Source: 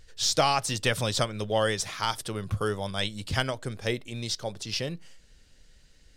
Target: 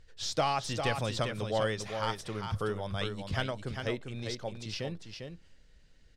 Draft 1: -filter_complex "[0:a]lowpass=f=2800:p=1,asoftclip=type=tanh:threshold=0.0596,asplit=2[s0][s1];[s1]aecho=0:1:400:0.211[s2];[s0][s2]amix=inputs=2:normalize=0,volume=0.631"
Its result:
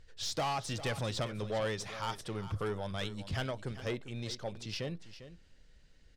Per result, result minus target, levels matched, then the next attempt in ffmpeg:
saturation: distortion +14 dB; echo-to-direct -7 dB
-filter_complex "[0:a]lowpass=f=2800:p=1,asoftclip=type=tanh:threshold=0.224,asplit=2[s0][s1];[s1]aecho=0:1:400:0.211[s2];[s0][s2]amix=inputs=2:normalize=0,volume=0.631"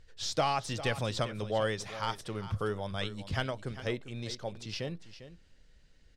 echo-to-direct -7 dB
-filter_complex "[0:a]lowpass=f=2800:p=1,asoftclip=type=tanh:threshold=0.224,asplit=2[s0][s1];[s1]aecho=0:1:400:0.473[s2];[s0][s2]amix=inputs=2:normalize=0,volume=0.631"

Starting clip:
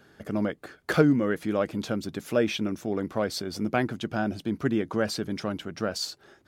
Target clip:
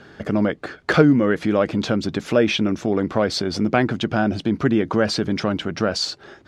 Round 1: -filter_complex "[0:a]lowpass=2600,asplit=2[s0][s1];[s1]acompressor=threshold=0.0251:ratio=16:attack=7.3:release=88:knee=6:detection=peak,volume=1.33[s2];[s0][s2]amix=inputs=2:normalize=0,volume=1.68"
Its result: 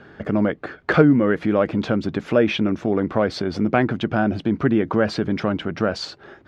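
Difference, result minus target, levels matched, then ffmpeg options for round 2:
4 kHz band -6.0 dB
-filter_complex "[0:a]lowpass=5300,asplit=2[s0][s1];[s1]acompressor=threshold=0.0251:ratio=16:attack=7.3:release=88:knee=6:detection=peak,volume=1.33[s2];[s0][s2]amix=inputs=2:normalize=0,volume=1.68"

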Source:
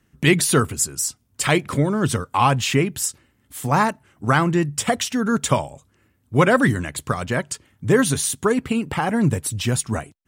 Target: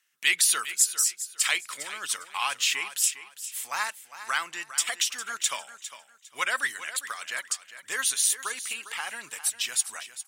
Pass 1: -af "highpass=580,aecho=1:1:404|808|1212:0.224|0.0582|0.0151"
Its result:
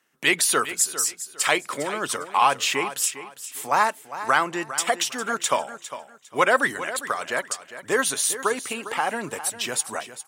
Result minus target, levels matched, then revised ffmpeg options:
500 Hz band +16.5 dB
-af "highpass=2100,aecho=1:1:404|808|1212:0.224|0.0582|0.0151"

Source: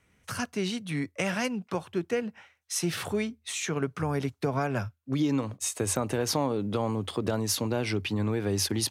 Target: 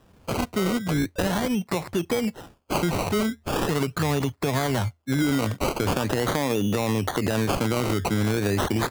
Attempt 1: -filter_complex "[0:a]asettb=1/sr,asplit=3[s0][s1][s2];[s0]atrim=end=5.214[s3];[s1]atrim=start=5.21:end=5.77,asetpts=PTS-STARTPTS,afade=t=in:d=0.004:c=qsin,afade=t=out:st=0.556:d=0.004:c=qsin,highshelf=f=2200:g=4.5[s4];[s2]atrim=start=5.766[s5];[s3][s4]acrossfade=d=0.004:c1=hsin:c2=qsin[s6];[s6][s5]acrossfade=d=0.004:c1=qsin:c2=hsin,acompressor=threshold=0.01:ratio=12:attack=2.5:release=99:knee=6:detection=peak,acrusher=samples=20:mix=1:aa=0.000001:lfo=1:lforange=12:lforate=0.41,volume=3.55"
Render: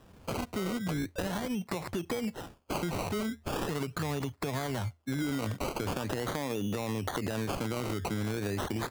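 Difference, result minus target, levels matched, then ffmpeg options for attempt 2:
compression: peak gain reduction +9.5 dB
-filter_complex "[0:a]asettb=1/sr,asplit=3[s0][s1][s2];[s0]atrim=end=5.214[s3];[s1]atrim=start=5.21:end=5.77,asetpts=PTS-STARTPTS,afade=t=in:d=0.004:c=qsin,afade=t=out:st=0.556:d=0.004:c=qsin,highshelf=f=2200:g=4.5[s4];[s2]atrim=start=5.766[s5];[s3][s4]acrossfade=d=0.004:c1=hsin:c2=qsin[s6];[s6][s5]acrossfade=d=0.004:c1=qsin:c2=hsin,acompressor=threshold=0.0335:ratio=12:attack=2.5:release=99:knee=6:detection=peak,acrusher=samples=20:mix=1:aa=0.000001:lfo=1:lforange=12:lforate=0.41,volume=3.55"

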